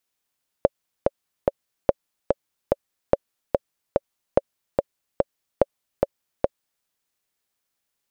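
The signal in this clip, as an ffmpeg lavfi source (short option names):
-f lavfi -i "aevalsrc='pow(10,(-1.5-3*gte(mod(t,3*60/145),60/145))/20)*sin(2*PI*559*mod(t,60/145))*exp(-6.91*mod(t,60/145)/0.03)':d=6.2:s=44100"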